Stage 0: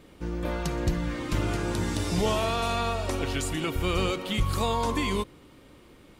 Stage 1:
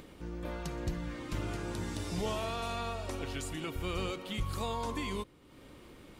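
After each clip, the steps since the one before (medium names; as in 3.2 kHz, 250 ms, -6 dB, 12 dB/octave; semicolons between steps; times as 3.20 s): upward compressor, threshold -34 dBFS; trim -9 dB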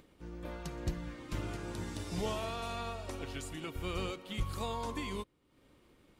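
upward expansion 1.5:1, over -57 dBFS; trim +1 dB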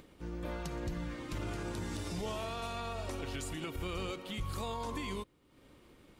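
peak limiter -34.5 dBFS, peak gain reduction 9.5 dB; trim +4.5 dB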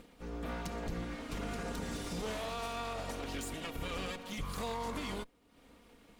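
comb filter that takes the minimum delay 4.2 ms; trim +1.5 dB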